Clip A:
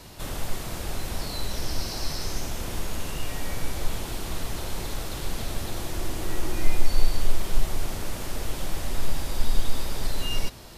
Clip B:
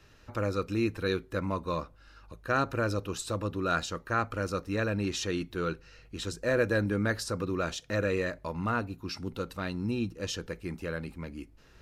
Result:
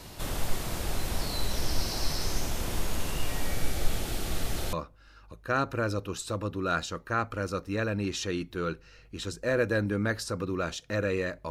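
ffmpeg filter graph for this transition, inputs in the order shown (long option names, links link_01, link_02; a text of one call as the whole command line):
ffmpeg -i cue0.wav -i cue1.wav -filter_complex "[0:a]asettb=1/sr,asplit=3[link_01][link_02][link_03];[link_01]atrim=end=3.474[link_04];[link_02]atrim=start=3.47:end=4.73,asetpts=PTS-STARTPTS,afade=type=in:duration=0.004:curve=qsin,afade=type=out:start_time=1.256:duration=0.004:curve=qsin,bandreject=frequency=1000:width=5.2[link_05];[link_03]atrim=start=4.726[link_06];[link_04][link_05]acrossfade=duration=0.004:curve1=hsin:curve2=qsin[link_07];[link_07][link_06]acrossfade=duration=0.004:curve1=qsin:curve2=hsin,apad=whole_dur=11.5,atrim=end=11.5,atrim=end=4.732[link_08];[1:a]atrim=start=1.728:end=8.5[link_09];[link_08][link_09]acrossfade=duration=0.004:curve1=hsin:curve2=hsin" out.wav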